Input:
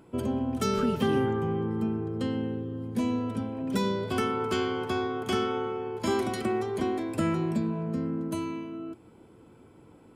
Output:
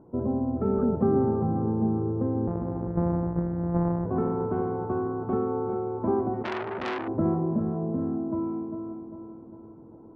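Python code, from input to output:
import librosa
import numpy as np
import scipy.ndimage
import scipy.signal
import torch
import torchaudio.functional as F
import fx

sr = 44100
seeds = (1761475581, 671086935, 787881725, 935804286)

p1 = fx.sample_sort(x, sr, block=256, at=(2.47, 4.06))
p2 = scipy.signal.sosfilt(scipy.signal.cheby2(4, 80, 5600.0, 'lowpass', fs=sr, output='sos'), p1)
p3 = p2 + fx.echo_feedback(p2, sr, ms=400, feedback_pct=52, wet_db=-9.0, dry=0)
p4 = fx.transformer_sat(p3, sr, knee_hz=2200.0, at=(6.43, 7.08))
y = p4 * 10.0 ** (2.0 / 20.0)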